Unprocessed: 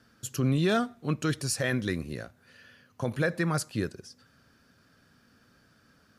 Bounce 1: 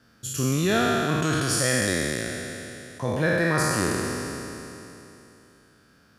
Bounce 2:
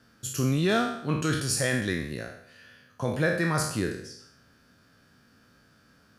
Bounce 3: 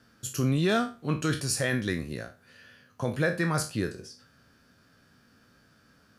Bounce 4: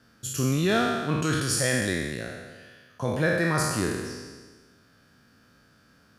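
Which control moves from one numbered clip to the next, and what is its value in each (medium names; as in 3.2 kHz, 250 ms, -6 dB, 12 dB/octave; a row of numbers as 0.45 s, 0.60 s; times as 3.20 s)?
spectral sustain, RT60: 3.14 s, 0.69 s, 0.31 s, 1.46 s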